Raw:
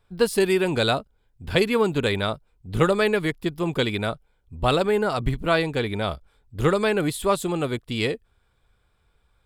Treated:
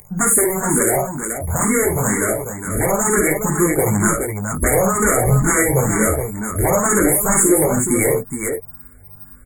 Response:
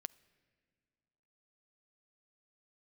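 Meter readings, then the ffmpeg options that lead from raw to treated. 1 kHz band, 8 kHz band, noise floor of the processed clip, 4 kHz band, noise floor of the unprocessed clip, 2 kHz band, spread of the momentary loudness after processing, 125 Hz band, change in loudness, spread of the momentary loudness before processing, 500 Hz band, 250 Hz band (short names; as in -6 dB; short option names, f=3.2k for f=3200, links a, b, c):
+6.0 dB, +23.5 dB, -42 dBFS, under -35 dB, -67 dBFS, +5.5 dB, 9 LU, +7.5 dB, +7.0 dB, 9 LU, +4.0 dB, +7.0 dB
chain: -filter_complex "[0:a]aeval=exprs='val(0)+0.0355*sin(2*PI*5500*n/s)':c=same,flanger=delay=19.5:depth=4:speed=0.26,highshelf=f=5.5k:g=-4.5,aeval=exprs='0.376*sin(PI/2*5.01*val(0)/0.376)':c=same,acompressor=threshold=-14dB:ratio=6,afftfilt=real='re*(1-between(b*sr/4096,2300,6600))':imag='im*(1-between(b*sr/4096,2300,6600))':win_size=4096:overlap=0.75,aeval=exprs='val(0)+0.00398*(sin(2*PI*50*n/s)+sin(2*PI*2*50*n/s)/2+sin(2*PI*3*50*n/s)/3+sin(2*PI*4*50*n/s)/4+sin(2*PI*5*50*n/s)/5)':c=same,aexciter=amount=4:drive=4:freq=3.9k,asplit=2[a][b];[b]aecho=0:1:52|68|420:0.501|0.266|0.447[c];[a][c]amix=inputs=2:normalize=0,dynaudnorm=f=390:g=7:m=16dB,alimiter=level_in=3.5dB:limit=-1dB:release=50:level=0:latency=1,asplit=2[d][e];[e]afreqshift=2.1[f];[d][f]amix=inputs=2:normalize=1,volume=-1dB"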